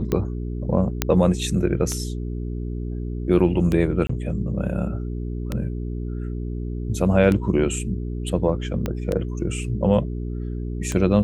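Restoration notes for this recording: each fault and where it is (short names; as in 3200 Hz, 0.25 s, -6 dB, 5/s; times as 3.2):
hum 60 Hz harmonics 7 -28 dBFS
tick 33 1/3 rpm -11 dBFS
1.02 pop -3 dBFS
4.07–4.09 gap 24 ms
8.86 pop -12 dBFS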